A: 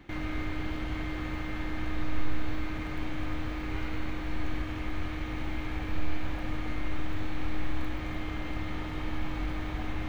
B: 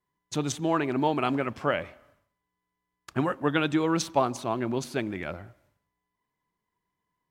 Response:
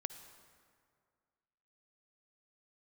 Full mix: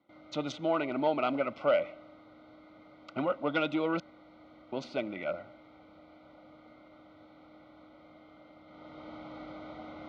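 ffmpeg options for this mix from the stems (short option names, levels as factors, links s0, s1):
-filter_complex "[0:a]equalizer=f=2600:w=3.2:g=-15,volume=0.562,afade=t=in:st=8.65:d=0.51:silence=0.298538[s0];[1:a]volume=0.75,asplit=3[s1][s2][s3];[s1]atrim=end=4,asetpts=PTS-STARTPTS,afade=t=out:st=3.996:d=0.004:c=hsin[s4];[s2]atrim=start=4:end=4.72,asetpts=PTS-STARTPTS,volume=0[s5];[s3]atrim=start=4.72,asetpts=PTS-STARTPTS,afade=t=in:d=0.004:c=hsin[s6];[s4][s5][s6]concat=n=3:v=0:a=1[s7];[s0][s7]amix=inputs=2:normalize=0,asoftclip=type=tanh:threshold=0.112,asuperstop=centerf=1700:order=20:qfactor=4.2,highpass=230,equalizer=f=400:t=q:w=4:g=-8,equalizer=f=590:t=q:w=4:g=10,equalizer=f=1000:t=q:w=4:g=-5,equalizer=f=1600:t=q:w=4:g=5,lowpass=f=4400:w=0.5412,lowpass=f=4400:w=1.3066"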